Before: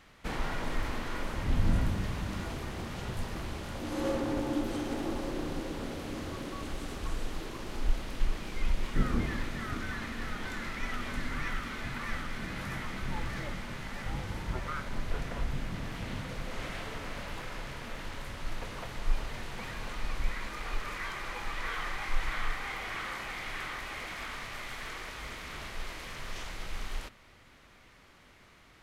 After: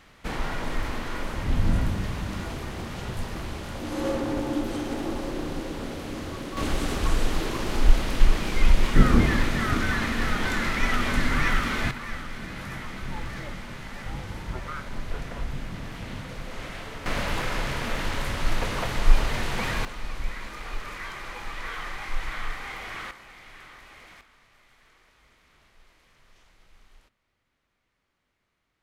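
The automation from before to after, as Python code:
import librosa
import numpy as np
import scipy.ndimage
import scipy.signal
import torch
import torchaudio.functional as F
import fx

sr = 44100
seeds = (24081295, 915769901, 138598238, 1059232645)

y = fx.gain(x, sr, db=fx.steps((0.0, 4.0), (6.57, 11.5), (11.91, 1.5), (17.06, 12.0), (19.85, 1.0), (23.11, -9.0), (24.21, -19.0)))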